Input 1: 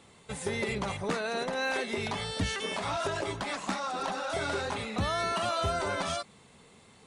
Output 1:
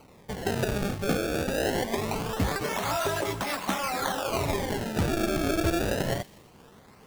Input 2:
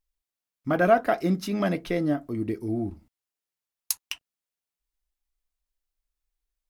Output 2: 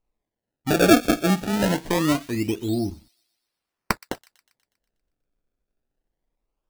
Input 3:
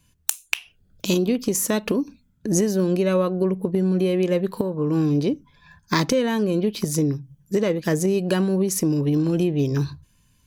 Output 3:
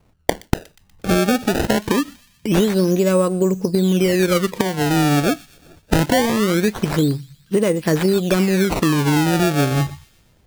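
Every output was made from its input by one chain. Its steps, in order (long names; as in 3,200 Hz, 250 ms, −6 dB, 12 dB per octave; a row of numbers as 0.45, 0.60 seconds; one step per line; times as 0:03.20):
sample-and-hold swept by an LFO 25×, swing 160% 0.23 Hz
delay with a high-pass on its return 121 ms, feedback 55%, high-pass 2,600 Hz, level −18 dB
level +4 dB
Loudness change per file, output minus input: +3.5, +4.0, +4.0 LU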